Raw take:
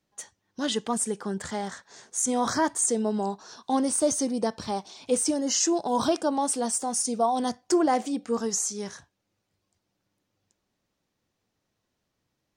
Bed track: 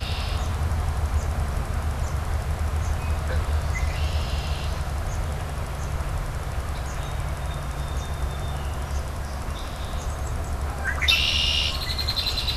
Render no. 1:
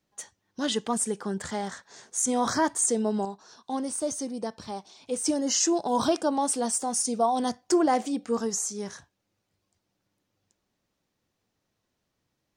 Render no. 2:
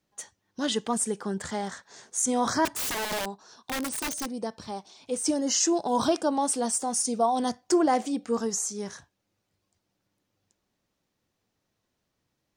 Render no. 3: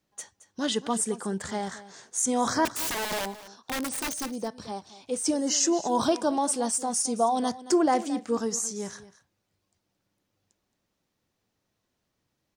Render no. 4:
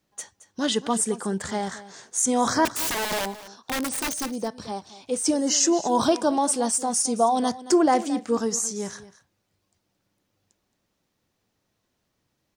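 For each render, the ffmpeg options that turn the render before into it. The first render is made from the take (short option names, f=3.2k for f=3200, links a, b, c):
-filter_complex "[0:a]asettb=1/sr,asplit=3[a][b][c];[a]atrim=end=8.444[d];[b]atrim=start=8.44:end=8.9,asetpts=PTS-STARTPTS,afade=t=in:d=0.004:c=qsin,afade=t=out:st=0.456:d=0.004:c=qsin,equalizer=f=3.6k:w=0.6:g=-4[e];[c]atrim=start=8.896[f];[d][e]acrossfade=d=0.004:c1=hsin:c2=qsin[g];[g][f]acrossfade=d=0.004:c1=qsin:c2=hsin,asplit=3[h][i][j];[h]atrim=end=3.252[k];[i]atrim=start=3.248:end=5.242,asetpts=PTS-STARTPTS,volume=-6dB[l];[j]atrim=start=5.238[m];[k][l]acrossfade=d=0.004:c1=hsin:c2=hsin[n];[n][m]acrossfade=d=0.004:c1=hsin:c2=hsin"
-filter_complex "[0:a]asettb=1/sr,asplit=3[a][b][c];[a]atrim=end=2.654[d];[b]atrim=start=2.65:end=4.36,asetpts=PTS-STARTPTS,afade=t=in:d=0.004:c=qsin,afade=t=out:st=1.706:d=0.004:c=qsin,aeval=exprs='(mod(18.8*val(0)+1,2)-1)/18.8':c=same[e];[c]atrim=start=4.356[f];[d][e]acrossfade=d=0.004:c1=hsin:c2=qsin[g];[g][f]acrossfade=d=0.004:c1=qsin:c2=hsin"
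-af "aecho=1:1:221:0.15"
-af "volume=3.5dB"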